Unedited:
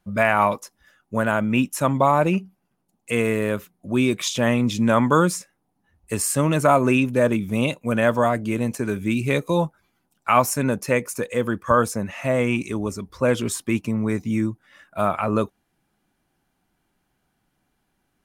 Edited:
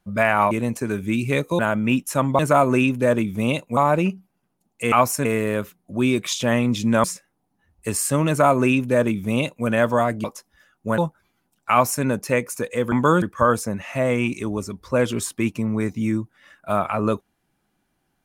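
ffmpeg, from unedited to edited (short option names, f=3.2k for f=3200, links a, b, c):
-filter_complex "[0:a]asplit=12[a][b][c][d][e][f][g][h][i][j][k][l];[a]atrim=end=0.512[m];[b]atrim=start=8.488:end=9.572[n];[c]atrim=start=1.248:end=2.052[o];[d]atrim=start=6.528:end=7.912[p];[e]atrim=start=2.048:end=3.202[q];[f]atrim=start=10.298:end=10.632[r];[g]atrim=start=3.198:end=4.992[s];[h]atrim=start=5.288:end=8.492[t];[i]atrim=start=0.508:end=1.252[u];[j]atrim=start=9.568:end=11.512[v];[k]atrim=start=4.988:end=5.292[w];[l]atrim=start=11.508[x];[m][n]acrossfade=d=0.004:c1=hsin:c2=hsin[y];[y][o]acrossfade=d=0.004:c1=hsin:c2=hsin[z];[z][p]acrossfade=d=0.004:c1=hsin:c2=hsin[aa];[aa][q]acrossfade=d=0.004:c1=hsin:c2=hsin[ab];[ab][r]acrossfade=d=0.004:c1=hsin:c2=hsin[ac];[ac][s]acrossfade=d=0.004:c1=hsin:c2=hsin[ad];[ad][t]acrossfade=d=0.004:c1=hsin:c2=hsin[ae];[ae][u]acrossfade=d=0.004:c1=hsin:c2=hsin[af];[af][v]acrossfade=d=0.004:c1=hsin:c2=hsin[ag];[ag][w]acrossfade=d=0.004:c1=hsin:c2=hsin[ah];[ah][x]acrossfade=d=0.004:c1=hsin:c2=hsin"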